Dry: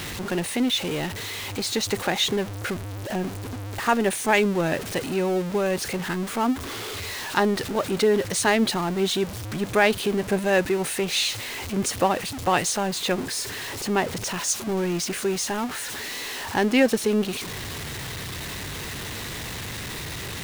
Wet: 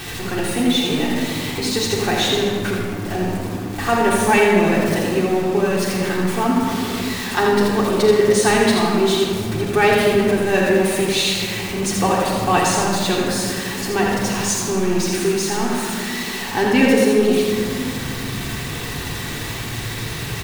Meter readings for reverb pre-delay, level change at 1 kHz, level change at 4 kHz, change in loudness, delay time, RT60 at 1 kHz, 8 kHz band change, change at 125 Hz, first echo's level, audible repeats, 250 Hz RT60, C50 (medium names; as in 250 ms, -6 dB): 3 ms, +6.5 dB, +4.5 dB, +6.5 dB, 83 ms, 2.3 s, +4.0 dB, +7.0 dB, -4.0 dB, 1, 4.3 s, -1.0 dB